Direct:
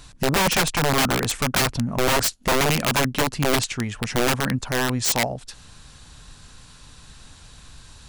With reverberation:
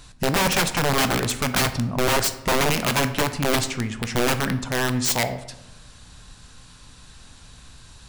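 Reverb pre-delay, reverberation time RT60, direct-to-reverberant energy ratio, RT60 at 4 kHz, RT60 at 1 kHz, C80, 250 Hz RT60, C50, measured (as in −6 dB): 11 ms, 1.0 s, 9.5 dB, 0.55 s, 0.95 s, 15.0 dB, 1.2 s, 12.0 dB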